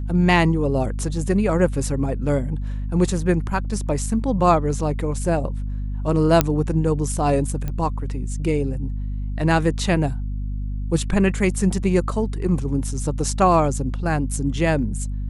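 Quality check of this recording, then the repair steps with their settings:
hum 50 Hz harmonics 5 -26 dBFS
6.41 pop -1 dBFS
7.68 pop -15 dBFS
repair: de-click; de-hum 50 Hz, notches 5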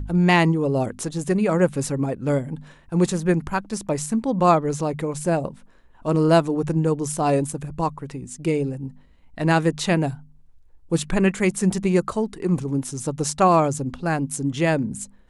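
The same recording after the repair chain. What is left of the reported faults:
7.68 pop

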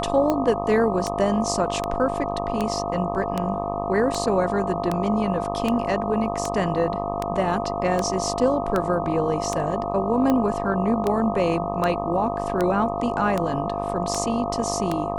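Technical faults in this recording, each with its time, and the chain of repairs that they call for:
buzz 50 Hz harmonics 25 -29 dBFS
tick 78 rpm -10 dBFS
tone 690 Hz -28 dBFS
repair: de-click; de-hum 50 Hz, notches 25; notch 690 Hz, Q 30

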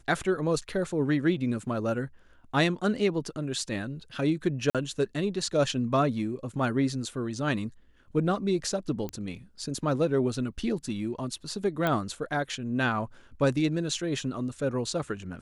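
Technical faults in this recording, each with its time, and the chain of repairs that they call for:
4.7–4.75 gap 47 ms
9.09 pop -21 dBFS
11.87 pop -14 dBFS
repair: de-click; interpolate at 4.7, 47 ms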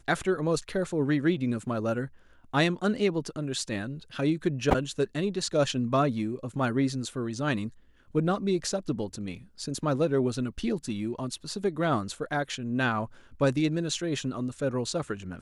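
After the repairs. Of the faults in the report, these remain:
none

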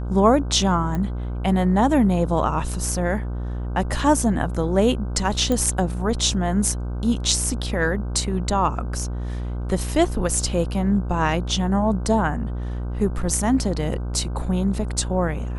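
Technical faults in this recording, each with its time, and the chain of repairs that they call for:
buzz 60 Hz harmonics 26 -27 dBFS
0.95 pop -16 dBFS
5.52 pop -11 dBFS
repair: de-click; de-hum 60 Hz, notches 26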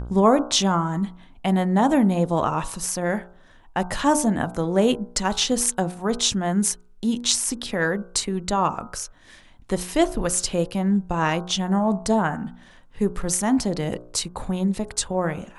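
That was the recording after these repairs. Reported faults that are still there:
none

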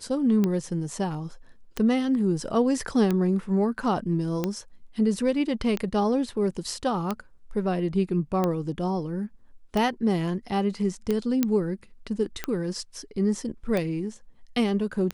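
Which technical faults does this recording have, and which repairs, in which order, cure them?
tick 45 rpm -13 dBFS
11.43 pop -9 dBFS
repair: de-click

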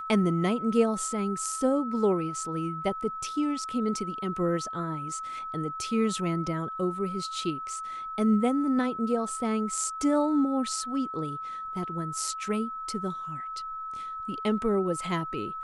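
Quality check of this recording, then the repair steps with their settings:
tone 1300 Hz -34 dBFS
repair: notch 1300 Hz, Q 30

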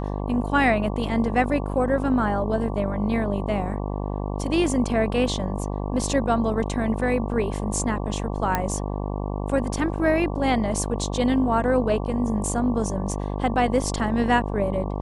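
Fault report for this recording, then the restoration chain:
buzz 50 Hz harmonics 23 -28 dBFS
8.55 pop -8 dBFS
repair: de-click; de-hum 50 Hz, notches 23

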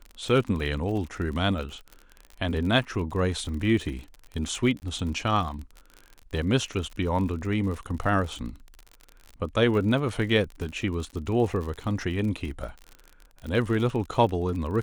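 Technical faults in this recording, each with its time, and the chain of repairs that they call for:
crackle 45/s -33 dBFS
4.8–4.82 gap 19 ms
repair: de-click; interpolate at 4.8, 19 ms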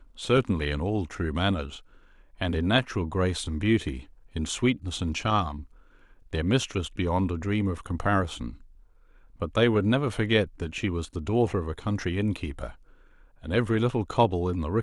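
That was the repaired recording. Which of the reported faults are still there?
none

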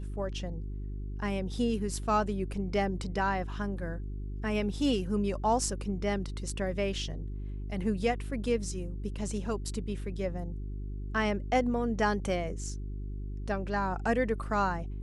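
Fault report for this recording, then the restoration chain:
hum 50 Hz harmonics 8 -37 dBFS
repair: de-hum 50 Hz, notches 8

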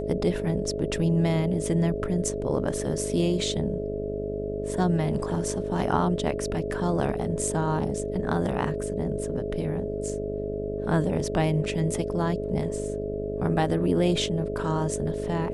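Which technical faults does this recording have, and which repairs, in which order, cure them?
buzz 50 Hz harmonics 13 -33 dBFS
tone 420 Hz -31 dBFS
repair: de-hum 50 Hz, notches 13; notch 420 Hz, Q 30

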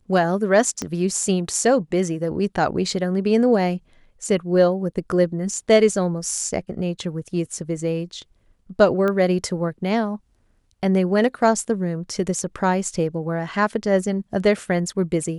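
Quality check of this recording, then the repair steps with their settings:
0.82 pop -13 dBFS
9.08 pop -13 dBFS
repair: de-click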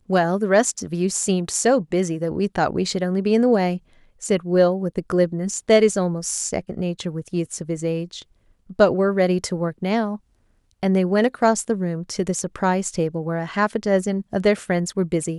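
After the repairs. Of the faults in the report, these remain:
0.82 pop

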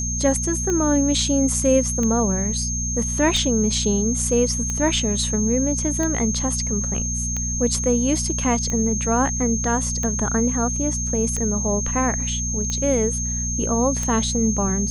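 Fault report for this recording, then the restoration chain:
hum 60 Hz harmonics 4 -27 dBFS
tick 45 rpm -13 dBFS
tone 6400 Hz -25 dBFS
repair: de-click; de-hum 60 Hz, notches 4; notch 6400 Hz, Q 30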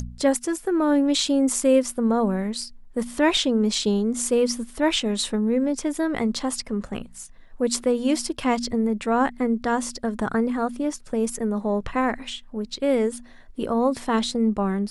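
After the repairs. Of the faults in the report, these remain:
none

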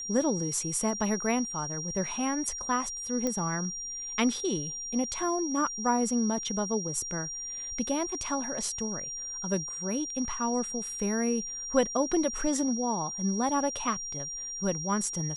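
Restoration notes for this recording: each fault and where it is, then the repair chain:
tone 5700 Hz -35 dBFS
3.27 pop -17 dBFS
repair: de-click; notch 5700 Hz, Q 30

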